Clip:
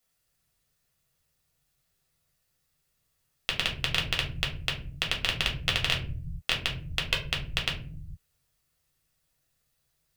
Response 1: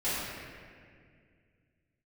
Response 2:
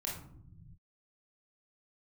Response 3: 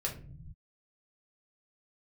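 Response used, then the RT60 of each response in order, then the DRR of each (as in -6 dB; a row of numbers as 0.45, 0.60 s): 3; 2.1 s, not exponential, not exponential; -15.0, -3.5, -1.5 dB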